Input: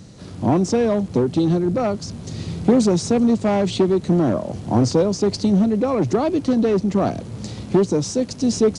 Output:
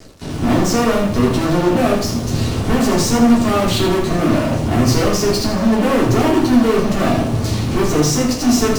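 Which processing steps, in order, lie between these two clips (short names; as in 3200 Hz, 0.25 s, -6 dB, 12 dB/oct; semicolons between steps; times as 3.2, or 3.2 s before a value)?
fuzz box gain 31 dB, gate -37 dBFS; shoebox room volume 230 m³, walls furnished, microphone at 3.3 m; lo-fi delay 81 ms, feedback 35%, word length 5-bit, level -7.5 dB; gain -8 dB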